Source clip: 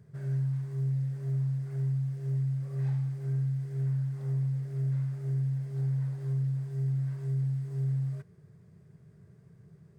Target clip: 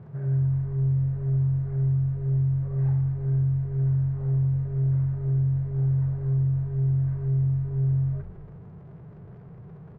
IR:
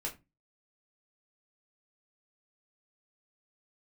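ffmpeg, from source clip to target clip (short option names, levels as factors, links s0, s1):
-filter_complex "[0:a]aeval=exprs='val(0)+0.5*0.00299*sgn(val(0))':c=same,lowpass=1200,asplit=7[s0][s1][s2][s3][s4][s5][s6];[s1]adelay=113,afreqshift=-46,volume=0.141[s7];[s2]adelay=226,afreqshift=-92,volume=0.0891[s8];[s3]adelay=339,afreqshift=-138,volume=0.0562[s9];[s4]adelay=452,afreqshift=-184,volume=0.0355[s10];[s5]adelay=565,afreqshift=-230,volume=0.0221[s11];[s6]adelay=678,afreqshift=-276,volume=0.014[s12];[s0][s7][s8][s9][s10][s11][s12]amix=inputs=7:normalize=0,volume=2"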